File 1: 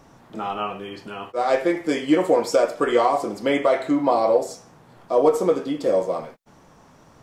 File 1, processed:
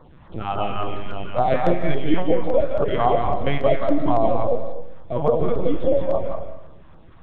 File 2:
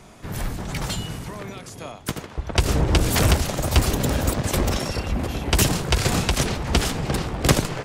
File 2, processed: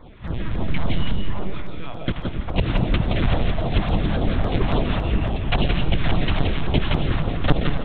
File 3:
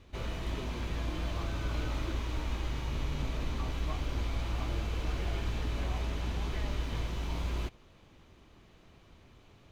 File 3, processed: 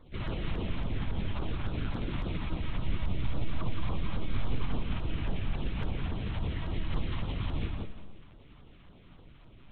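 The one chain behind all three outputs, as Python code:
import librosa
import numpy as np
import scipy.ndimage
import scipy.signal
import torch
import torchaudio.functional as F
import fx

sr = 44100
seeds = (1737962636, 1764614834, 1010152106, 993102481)

y = fx.peak_eq(x, sr, hz=160.0, db=6.5, octaves=0.81)
y = fx.lpc_vocoder(y, sr, seeds[0], excitation='pitch_kept', order=10)
y = y + 10.0 ** (-3.5 / 20.0) * np.pad(y, (int(171 * sr / 1000.0), 0))[:len(y)]
y = fx.filter_lfo_notch(y, sr, shape='saw_down', hz=3.6, low_hz=280.0, high_hz=2800.0, q=0.96)
y = fx.rider(y, sr, range_db=3, speed_s=0.5)
y = fx.rev_freeverb(y, sr, rt60_s=0.88, hf_ratio=0.55, predelay_ms=115, drr_db=10.5)
y = fx.dynamic_eq(y, sr, hz=690.0, q=3.2, threshold_db=-39.0, ratio=4.0, max_db=5)
y = F.gain(torch.from_numpy(y), -1.0).numpy()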